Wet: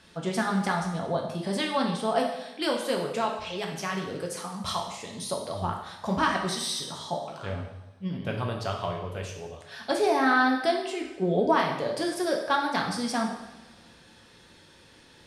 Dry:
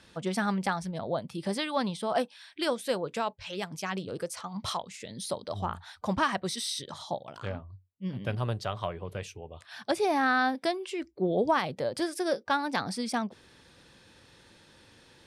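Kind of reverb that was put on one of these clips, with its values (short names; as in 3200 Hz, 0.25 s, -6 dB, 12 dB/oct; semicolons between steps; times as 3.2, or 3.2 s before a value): two-slope reverb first 0.86 s, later 2.5 s, from -20 dB, DRR 0 dB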